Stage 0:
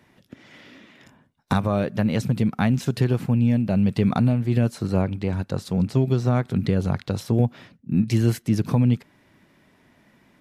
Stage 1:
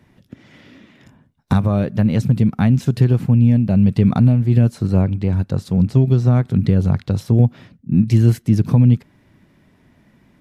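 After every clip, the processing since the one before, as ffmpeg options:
-af "lowshelf=f=240:g=11.5,volume=-1dB"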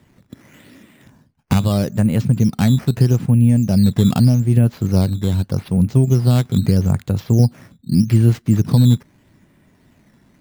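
-af "acrusher=samples=8:mix=1:aa=0.000001:lfo=1:lforange=8:lforate=0.81"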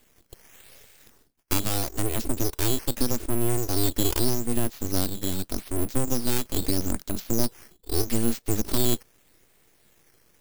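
-af "aeval=exprs='abs(val(0))':c=same,crystalizer=i=4.5:c=0,volume=-9dB"

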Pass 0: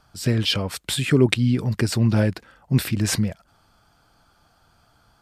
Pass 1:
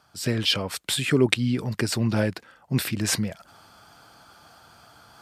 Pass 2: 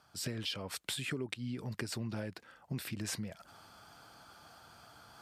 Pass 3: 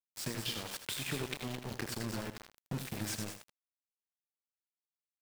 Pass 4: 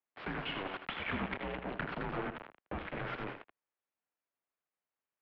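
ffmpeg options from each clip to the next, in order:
-af "areverse,acompressor=mode=upward:threshold=-39dB:ratio=2.5,areverse,highpass=75,lowshelf=f=250:g=-7"
-af "acompressor=threshold=-31dB:ratio=6,volume=-5dB"
-filter_complex "[0:a]asplit=2[a][b];[b]aecho=0:1:29.15|96.21|215.7:0.316|0.355|0.398[c];[a][c]amix=inputs=2:normalize=0,aeval=exprs='val(0)*gte(abs(val(0)),0.015)':c=same,asplit=2[d][e];[e]aecho=0:1:80:0.316[f];[d][f]amix=inputs=2:normalize=0"
-filter_complex "[0:a]acrossover=split=370 2300:gain=0.0708 1 0.251[a][b][c];[a][b][c]amix=inputs=3:normalize=0,aeval=exprs='clip(val(0),-1,0.00596)':c=same,highpass=f=150:t=q:w=0.5412,highpass=f=150:t=q:w=1.307,lowpass=f=3.3k:t=q:w=0.5176,lowpass=f=3.3k:t=q:w=0.7071,lowpass=f=3.3k:t=q:w=1.932,afreqshift=-190,volume=9.5dB"

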